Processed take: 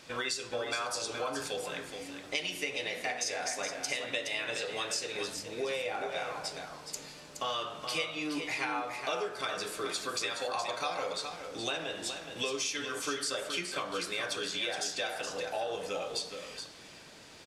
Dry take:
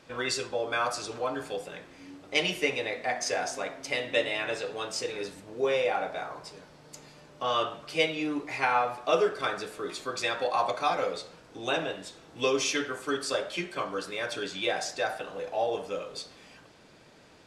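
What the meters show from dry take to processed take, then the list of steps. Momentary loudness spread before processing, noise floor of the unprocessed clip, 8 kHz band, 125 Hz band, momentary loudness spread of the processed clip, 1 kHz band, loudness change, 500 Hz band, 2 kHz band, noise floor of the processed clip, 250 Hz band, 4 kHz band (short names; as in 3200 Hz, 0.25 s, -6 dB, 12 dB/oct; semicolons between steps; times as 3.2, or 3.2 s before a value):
13 LU, -55 dBFS, +1.5 dB, -5.5 dB, 7 LU, -6.0 dB, -4.5 dB, -6.5 dB, -3.5 dB, -51 dBFS, -5.5 dB, -0.5 dB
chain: high shelf 2300 Hz +9.5 dB; de-hum 63.04 Hz, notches 27; compressor, threshold -32 dBFS, peak gain reduction 15 dB; on a send: echo 0.42 s -7.5 dB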